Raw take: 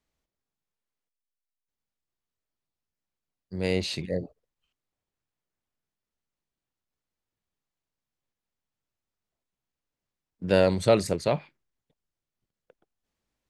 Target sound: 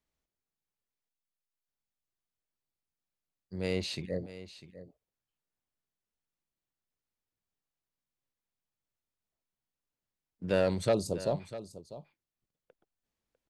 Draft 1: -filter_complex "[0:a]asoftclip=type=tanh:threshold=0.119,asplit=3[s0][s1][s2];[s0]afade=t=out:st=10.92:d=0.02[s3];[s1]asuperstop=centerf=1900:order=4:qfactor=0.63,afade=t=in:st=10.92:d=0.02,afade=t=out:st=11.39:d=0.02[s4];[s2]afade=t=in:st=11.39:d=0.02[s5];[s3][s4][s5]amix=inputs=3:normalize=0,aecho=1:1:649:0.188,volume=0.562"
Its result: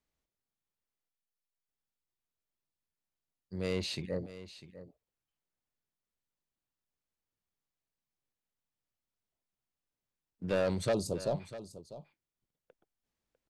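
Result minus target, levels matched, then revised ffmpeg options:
saturation: distortion +8 dB
-filter_complex "[0:a]asoftclip=type=tanh:threshold=0.266,asplit=3[s0][s1][s2];[s0]afade=t=out:st=10.92:d=0.02[s3];[s1]asuperstop=centerf=1900:order=4:qfactor=0.63,afade=t=in:st=10.92:d=0.02,afade=t=out:st=11.39:d=0.02[s4];[s2]afade=t=in:st=11.39:d=0.02[s5];[s3][s4][s5]amix=inputs=3:normalize=0,aecho=1:1:649:0.188,volume=0.562"

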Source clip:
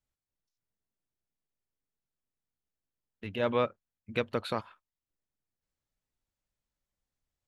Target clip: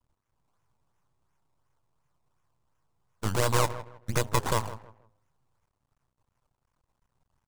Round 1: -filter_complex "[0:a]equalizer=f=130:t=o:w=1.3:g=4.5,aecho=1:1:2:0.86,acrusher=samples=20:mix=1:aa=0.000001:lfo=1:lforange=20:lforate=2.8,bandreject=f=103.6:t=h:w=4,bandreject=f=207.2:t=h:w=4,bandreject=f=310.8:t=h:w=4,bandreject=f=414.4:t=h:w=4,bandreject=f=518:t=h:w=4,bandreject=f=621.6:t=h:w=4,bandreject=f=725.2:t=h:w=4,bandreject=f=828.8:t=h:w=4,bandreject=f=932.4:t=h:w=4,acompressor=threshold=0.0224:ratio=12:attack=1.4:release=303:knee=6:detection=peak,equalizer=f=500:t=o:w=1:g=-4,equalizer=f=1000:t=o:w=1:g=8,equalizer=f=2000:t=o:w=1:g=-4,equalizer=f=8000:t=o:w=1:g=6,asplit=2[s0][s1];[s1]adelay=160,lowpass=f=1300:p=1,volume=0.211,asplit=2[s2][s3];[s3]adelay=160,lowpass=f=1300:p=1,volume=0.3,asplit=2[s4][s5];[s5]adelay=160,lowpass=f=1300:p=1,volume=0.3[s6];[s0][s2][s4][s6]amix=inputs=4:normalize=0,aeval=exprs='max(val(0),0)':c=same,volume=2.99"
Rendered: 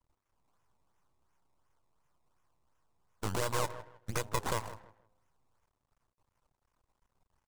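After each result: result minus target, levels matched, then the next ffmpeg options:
compression: peak gain reduction +6.5 dB; 125 Hz band -2.5 dB
-filter_complex "[0:a]equalizer=f=130:t=o:w=1.3:g=4.5,aecho=1:1:2:0.86,acrusher=samples=20:mix=1:aa=0.000001:lfo=1:lforange=20:lforate=2.8,bandreject=f=103.6:t=h:w=4,bandreject=f=207.2:t=h:w=4,bandreject=f=310.8:t=h:w=4,bandreject=f=414.4:t=h:w=4,bandreject=f=518:t=h:w=4,bandreject=f=621.6:t=h:w=4,bandreject=f=725.2:t=h:w=4,bandreject=f=828.8:t=h:w=4,bandreject=f=932.4:t=h:w=4,acompressor=threshold=0.0596:ratio=12:attack=1.4:release=303:knee=6:detection=peak,equalizer=f=500:t=o:w=1:g=-4,equalizer=f=1000:t=o:w=1:g=8,equalizer=f=2000:t=o:w=1:g=-4,equalizer=f=8000:t=o:w=1:g=6,asplit=2[s0][s1];[s1]adelay=160,lowpass=f=1300:p=1,volume=0.211,asplit=2[s2][s3];[s3]adelay=160,lowpass=f=1300:p=1,volume=0.3,asplit=2[s4][s5];[s5]adelay=160,lowpass=f=1300:p=1,volume=0.3[s6];[s0][s2][s4][s6]amix=inputs=4:normalize=0,aeval=exprs='max(val(0),0)':c=same,volume=2.99"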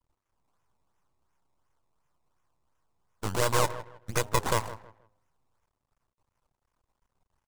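125 Hz band -3.5 dB
-filter_complex "[0:a]equalizer=f=130:t=o:w=1.3:g=12,aecho=1:1:2:0.86,acrusher=samples=20:mix=1:aa=0.000001:lfo=1:lforange=20:lforate=2.8,bandreject=f=103.6:t=h:w=4,bandreject=f=207.2:t=h:w=4,bandreject=f=310.8:t=h:w=4,bandreject=f=414.4:t=h:w=4,bandreject=f=518:t=h:w=4,bandreject=f=621.6:t=h:w=4,bandreject=f=725.2:t=h:w=4,bandreject=f=828.8:t=h:w=4,bandreject=f=932.4:t=h:w=4,acompressor=threshold=0.0596:ratio=12:attack=1.4:release=303:knee=6:detection=peak,equalizer=f=500:t=o:w=1:g=-4,equalizer=f=1000:t=o:w=1:g=8,equalizer=f=2000:t=o:w=1:g=-4,equalizer=f=8000:t=o:w=1:g=6,asplit=2[s0][s1];[s1]adelay=160,lowpass=f=1300:p=1,volume=0.211,asplit=2[s2][s3];[s3]adelay=160,lowpass=f=1300:p=1,volume=0.3,asplit=2[s4][s5];[s5]adelay=160,lowpass=f=1300:p=1,volume=0.3[s6];[s0][s2][s4][s6]amix=inputs=4:normalize=0,aeval=exprs='max(val(0),0)':c=same,volume=2.99"

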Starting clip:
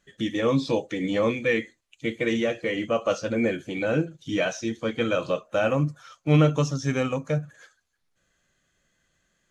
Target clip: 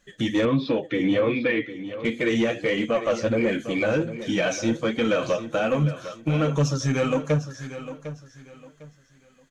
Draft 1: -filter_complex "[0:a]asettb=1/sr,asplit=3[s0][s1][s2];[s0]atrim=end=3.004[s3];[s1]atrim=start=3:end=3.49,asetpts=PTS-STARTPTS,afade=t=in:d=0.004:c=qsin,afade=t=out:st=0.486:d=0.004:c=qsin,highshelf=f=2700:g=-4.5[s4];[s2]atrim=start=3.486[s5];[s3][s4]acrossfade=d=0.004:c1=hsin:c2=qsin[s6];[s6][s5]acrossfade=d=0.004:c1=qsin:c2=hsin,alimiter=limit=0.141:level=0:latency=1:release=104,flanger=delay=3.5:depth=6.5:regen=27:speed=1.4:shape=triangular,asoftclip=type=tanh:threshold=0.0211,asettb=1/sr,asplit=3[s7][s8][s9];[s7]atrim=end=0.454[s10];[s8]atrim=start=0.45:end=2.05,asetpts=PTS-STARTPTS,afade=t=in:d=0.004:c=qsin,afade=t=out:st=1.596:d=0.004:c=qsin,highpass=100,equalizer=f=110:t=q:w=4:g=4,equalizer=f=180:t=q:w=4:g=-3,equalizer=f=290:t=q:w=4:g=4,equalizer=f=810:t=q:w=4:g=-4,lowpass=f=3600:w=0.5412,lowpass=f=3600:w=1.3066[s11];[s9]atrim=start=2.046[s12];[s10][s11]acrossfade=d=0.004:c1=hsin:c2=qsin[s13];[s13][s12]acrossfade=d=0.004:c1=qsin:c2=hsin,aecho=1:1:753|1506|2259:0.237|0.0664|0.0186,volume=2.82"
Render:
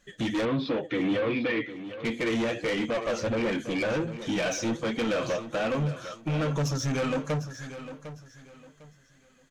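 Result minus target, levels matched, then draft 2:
saturation: distortion +11 dB
-filter_complex "[0:a]asettb=1/sr,asplit=3[s0][s1][s2];[s0]atrim=end=3.004[s3];[s1]atrim=start=3:end=3.49,asetpts=PTS-STARTPTS,afade=t=in:d=0.004:c=qsin,afade=t=out:st=0.486:d=0.004:c=qsin,highshelf=f=2700:g=-4.5[s4];[s2]atrim=start=3.486[s5];[s3][s4]acrossfade=d=0.004:c1=hsin:c2=qsin[s6];[s6][s5]acrossfade=d=0.004:c1=qsin:c2=hsin,alimiter=limit=0.141:level=0:latency=1:release=104,flanger=delay=3.5:depth=6.5:regen=27:speed=1.4:shape=triangular,asoftclip=type=tanh:threshold=0.0708,asettb=1/sr,asplit=3[s7][s8][s9];[s7]atrim=end=0.454[s10];[s8]atrim=start=0.45:end=2.05,asetpts=PTS-STARTPTS,afade=t=in:d=0.004:c=qsin,afade=t=out:st=1.596:d=0.004:c=qsin,highpass=100,equalizer=f=110:t=q:w=4:g=4,equalizer=f=180:t=q:w=4:g=-3,equalizer=f=290:t=q:w=4:g=4,equalizer=f=810:t=q:w=4:g=-4,lowpass=f=3600:w=0.5412,lowpass=f=3600:w=1.3066[s11];[s9]atrim=start=2.046[s12];[s10][s11]acrossfade=d=0.004:c1=hsin:c2=qsin[s13];[s13][s12]acrossfade=d=0.004:c1=qsin:c2=hsin,aecho=1:1:753|1506|2259:0.237|0.0664|0.0186,volume=2.82"

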